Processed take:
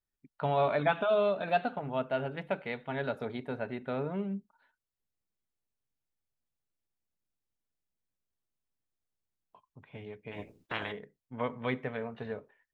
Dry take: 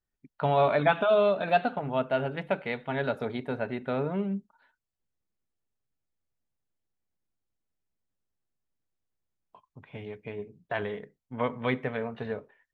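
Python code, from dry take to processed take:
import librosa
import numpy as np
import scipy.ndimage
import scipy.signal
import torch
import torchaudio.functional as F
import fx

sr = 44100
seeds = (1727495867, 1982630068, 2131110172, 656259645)

y = fx.spec_clip(x, sr, under_db=23, at=(10.31, 10.91), fade=0.02)
y = F.gain(torch.from_numpy(y), -4.5).numpy()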